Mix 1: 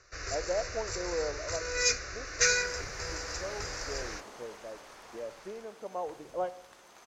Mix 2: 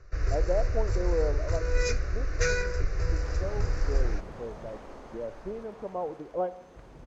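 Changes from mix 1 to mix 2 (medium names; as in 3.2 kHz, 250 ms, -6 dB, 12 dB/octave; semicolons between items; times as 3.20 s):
second sound: entry +0.70 s; master: add tilt EQ -4 dB/octave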